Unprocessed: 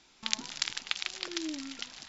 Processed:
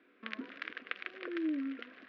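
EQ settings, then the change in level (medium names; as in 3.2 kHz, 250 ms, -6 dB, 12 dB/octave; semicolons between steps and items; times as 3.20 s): distance through air 59 m; cabinet simulation 180–2200 Hz, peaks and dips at 190 Hz +3 dB, 270 Hz +6 dB, 480 Hz +8 dB, 760 Hz +7 dB, 1.1 kHz +5 dB, 1.6 kHz +5 dB; static phaser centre 350 Hz, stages 4; +1.0 dB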